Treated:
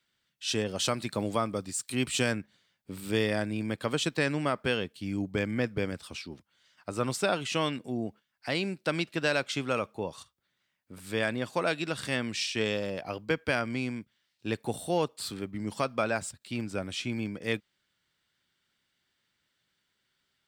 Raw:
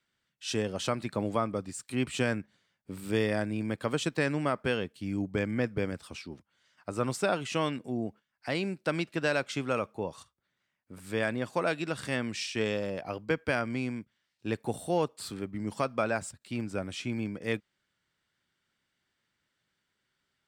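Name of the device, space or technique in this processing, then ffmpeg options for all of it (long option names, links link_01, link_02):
presence and air boost: -filter_complex "[0:a]equalizer=frequency=3700:width_type=o:width=1.2:gain=5,highshelf=frequency=11000:gain=6.5,asettb=1/sr,asplit=3[link_01][link_02][link_03];[link_01]atrim=end=0.644[link_04];[link_02]atrim=start=0.64:end=2.32,asetpts=PTS-STARTPTS,afade=type=in:duration=0.004:curve=qsin,afade=type=out:start_time=1.676:duration=0.004:curve=qsin,adynamicequalizer=threshold=0.00447:dfrequency=4300:dqfactor=0.7:tfrequency=4300:tqfactor=0.7:attack=5:release=100:ratio=0.375:range=3:mode=boostabove:tftype=highshelf[link_05];[link_03]atrim=start=2.316[link_06];[link_04][link_05]acrossfade=duration=0.004:curve1=hsin:curve2=qsin[link_07];[link_07][link_06]acrossfade=duration=0.004:curve1=qsin:curve2=hsin"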